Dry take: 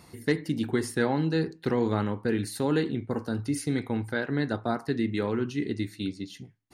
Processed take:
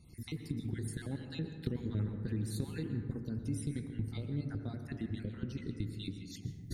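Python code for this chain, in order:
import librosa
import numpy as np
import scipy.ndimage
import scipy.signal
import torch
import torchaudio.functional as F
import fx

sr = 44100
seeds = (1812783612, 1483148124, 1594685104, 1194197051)

y = fx.spec_dropout(x, sr, seeds[0], share_pct=39)
y = fx.recorder_agc(y, sr, target_db=-21.5, rise_db_per_s=47.0, max_gain_db=30)
y = fx.tone_stack(y, sr, knobs='10-0-1')
y = fx.echo_bbd(y, sr, ms=84, stages=1024, feedback_pct=75, wet_db=-13.0)
y = fx.rev_plate(y, sr, seeds[1], rt60_s=1.7, hf_ratio=0.3, predelay_ms=105, drr_db=7.5)
y = y * librosa.db_to_amplitude(8.0)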